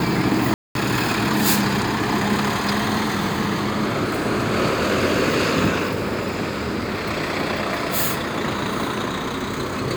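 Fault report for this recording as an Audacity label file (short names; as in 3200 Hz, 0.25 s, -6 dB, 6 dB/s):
0.540000	0.750000	gap 0.212 s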